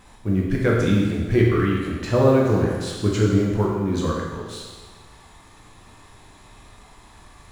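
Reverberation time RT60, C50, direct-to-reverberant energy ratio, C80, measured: 1.4 s, 0.5 dB, -3.5 dB, 2.5 dB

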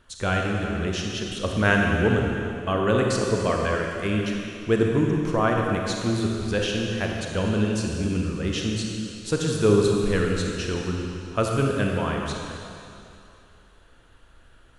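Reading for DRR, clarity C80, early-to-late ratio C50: 0.0 dB, 1.5 dB, 0.5 dB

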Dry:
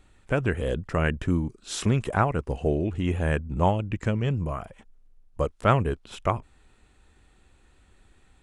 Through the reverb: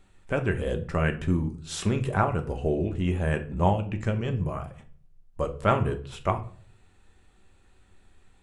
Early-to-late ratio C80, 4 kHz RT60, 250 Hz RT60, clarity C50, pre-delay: 18.5 dB, 0.30 s, 0.65 s, 14.0 dB, 5 ms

